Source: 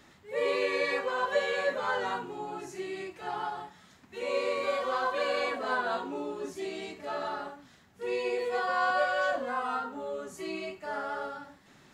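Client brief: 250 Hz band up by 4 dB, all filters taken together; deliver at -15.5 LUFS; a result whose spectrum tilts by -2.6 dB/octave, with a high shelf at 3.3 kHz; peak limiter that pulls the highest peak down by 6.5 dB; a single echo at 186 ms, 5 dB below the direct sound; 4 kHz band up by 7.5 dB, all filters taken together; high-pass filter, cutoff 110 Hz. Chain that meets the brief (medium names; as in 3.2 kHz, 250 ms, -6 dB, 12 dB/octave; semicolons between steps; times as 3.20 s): high-pass 110 Hz; peaking EQ 250 Hz +5.5 dB; treble shelf 3.3 kHz +5.5 dB; peaking EQ 4 kHz +5.5 dB; peak limiter -20.5 dBFS; delay 186 ms -5 dB; trim +15 dB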